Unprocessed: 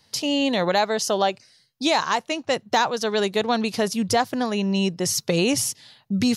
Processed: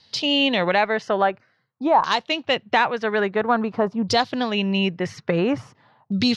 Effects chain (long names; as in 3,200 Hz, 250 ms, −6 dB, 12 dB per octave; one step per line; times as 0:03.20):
auto-filter low-pass saw down 0.49 Hz 910–4,300 Hz
harmonic generator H 6 −36 dB, 8 −42 dB, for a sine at −4.5 dBFS